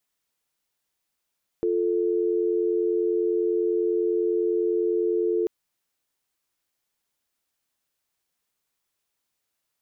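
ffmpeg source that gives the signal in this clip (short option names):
-f lavfi -i "aevalsrc='0.0668*(sin(2*PI*350*t)+sin(2*PI*440*t))':d=3.84:s=44100"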